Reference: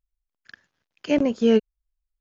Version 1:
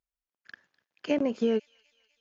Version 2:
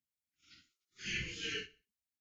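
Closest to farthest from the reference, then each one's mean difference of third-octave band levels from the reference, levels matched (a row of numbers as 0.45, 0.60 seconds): 1, 2; 2.5, 14.0 decibels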